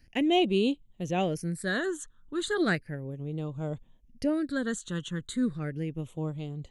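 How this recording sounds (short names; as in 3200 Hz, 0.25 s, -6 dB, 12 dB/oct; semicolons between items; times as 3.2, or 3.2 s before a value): phasing stages 8, 0.35 Hz, lowest notch 670–1700 Hz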